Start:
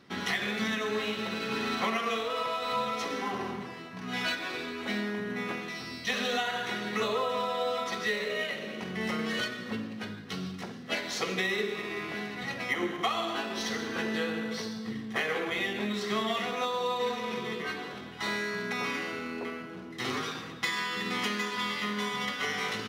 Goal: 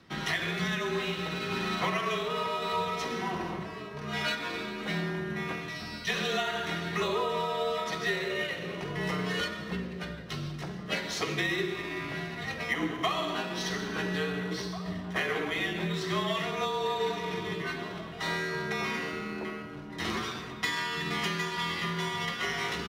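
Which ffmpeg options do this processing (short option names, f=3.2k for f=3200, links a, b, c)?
-filter_complex "[0:a]asplit=2[a][b];[b]adelay=1691,volume=-10dB,highshelf=f=4k:g=-38[c];[a][c]amix=inputs=2:normalize=0,afreqshift=-38"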